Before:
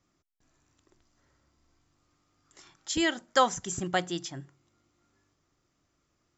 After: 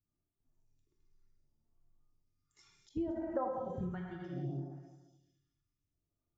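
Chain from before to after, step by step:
spectral dynamics exaggerated over time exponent 1.5
reverb whose tail is shaped and stops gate 480 ms falling, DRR −1.5 dB
downward compressor 20 to 1, threshold −39 dBFS, peak gain reduction 24 dB
delay that swaps between a low-pass and a high-pass 107 ms, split 1,100 Hz, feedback 59%, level −8 dB
all-pass phaser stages 2, 0.67 Hz, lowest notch 550–3,200 Hz
treble cut that deepens with the level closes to 1,200 Hz, closed at −44 dBFS
low-shelf EQ 340 Hz +8 dB
downsampling to 16,000 Hz
parametric band 710 Hz +11 dB 2.2 octaves
every ending faded ahead of time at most 110 dB per second
level −1.5 dB

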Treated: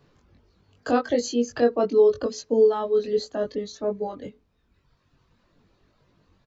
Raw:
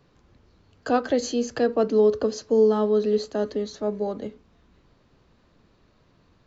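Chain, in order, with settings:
reverb reduction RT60 1.7 s
double-tracking delay 21 ms −3 dB
level −1 dB

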